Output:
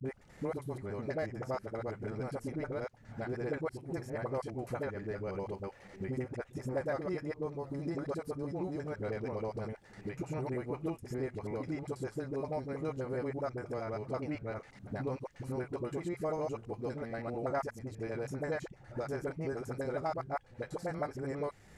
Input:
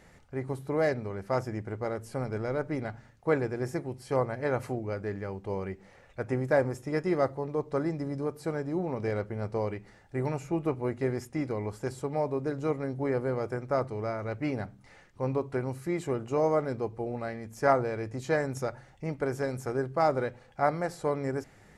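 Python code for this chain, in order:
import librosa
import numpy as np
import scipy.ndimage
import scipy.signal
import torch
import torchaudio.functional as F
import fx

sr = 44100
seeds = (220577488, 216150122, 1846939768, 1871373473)

y = fx.block_reorder(x, sr, ms=81.0, group=5)
y = fx.dispersion(y, sr, late='highs', ms=50.0, hz=390.0)
y = fx.band_squash(y, sr, depth_pct=70)
y = y * librosa.db_to_amplitude(-7.0)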